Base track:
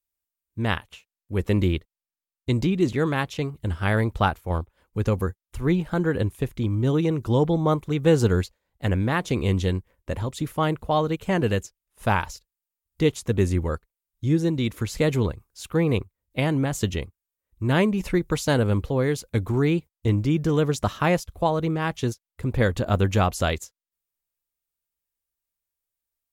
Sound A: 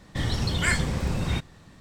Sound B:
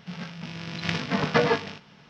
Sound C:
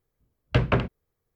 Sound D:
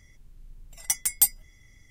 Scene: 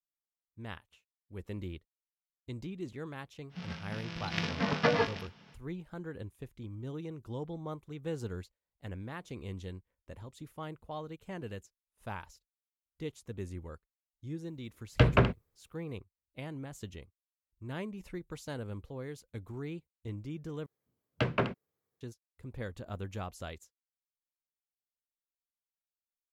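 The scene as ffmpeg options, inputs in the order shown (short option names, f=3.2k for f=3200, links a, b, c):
-filter_complex "[3:a]asplit=2[a][b];[0:a]volume=-19dB[c];[b]highpass=150[d];[c]asplit=2[e][f];[e]atrim=end=20.664[g];[d]atrim=end=1.35,asetpts=PTS-STARTPTS,volume=-5.5dB[h];[f]atrim=start=22.006[i];[2:a]atrim=end=2.09,asetpts=PTS-STARTPTS,volume=-5.5dB,afade=t=in:d=0.05,afade=t=out:st=2.04:d=0.05,adelay=153909S[j];[a]atrim=end=1.35,asetpts=PTS-STARTPTS,volume=-1.5dB,afade=t=in:d=0.004:c=hsin,afade=t=out:st=1.346:d=0.004:c=hsin,adelay=14450[k];[g][h]acrossfade=d=0.004:c1=hsin:c2=hsin[l];[l][i]acrossfade=d=0.004:c1=hsin:c2=hsin[m];[m][j][k]amix=inputs=3:normalize=0"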